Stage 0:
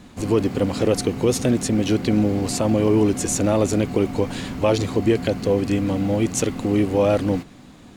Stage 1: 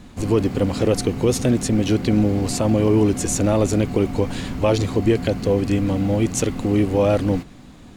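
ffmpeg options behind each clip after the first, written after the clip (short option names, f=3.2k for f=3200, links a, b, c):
-af "lowshelf=f=73:g=10"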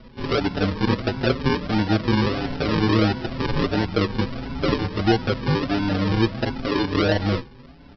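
-filter_complex "[0:a]aresample=11025,acrusher=samples=13:mix=1:aa=0.000001:lfo=1:lforange=7.8:lforate=1.5,aresample=44100,asplit=2[a][b];[b]adelay=5.7,afreqshift=0.94[c];[a][c]amix=inputs=2:normalize=1"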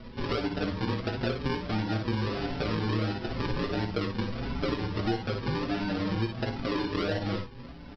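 -filter_complex "[0:a]aeval=exprs='0.531*(cos(1*acos(clip(val(0)/0.531,-1,1)))-cos(1*PI/2))+0.00531*(cos(8*acos(clip(val(0)/0.531,-1,1)))-cos(8*PI/2))':c=same,asplit=2[a][b];[b]aecho=0:1:17|55|65:0.398|0.398|0.266[c];[a][c]amix=inputs=2:normalize=0,acompressor=threshold=-30dB:ratio=3"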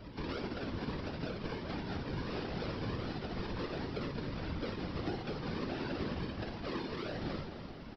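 -filter_complex "[0:a]alimiter=level_in=2dB:limit=-24dB:level=0:latency=1:release=164,volume=-2dB,afftfilt=real='hypot(re,im)*cos(2*PI*random(0))':imag='hypot(re,im)*sin(2*PI*random(1))':win_size=512:overlap=0.75,asplit=7[a][b][c][d][e][f][g];[b]adelay=214,afreqshift=33,volume=-9dB[h];[c]adelay=428,afreqshift=66,volume=-14.4dB[i];[d]adelay=642,afreqshift=99,volume=-19.7dB[j];[e]adelay=856,afreqshift=132,volume=-25.1dB[k];[f]adelay=1070,afreqshift=165,volume=-30.4dB[l];[g]adelay=1284,afreqshift=198,volume=-35.8dB[m];[a][h][i][j][k][l][m]amix=inputs=7:normalize=0,volume=2dB"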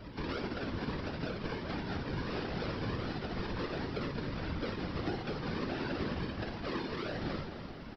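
-af "equalizer=f=1.6k:w=1.5:g=2.5,volume=1.5dB"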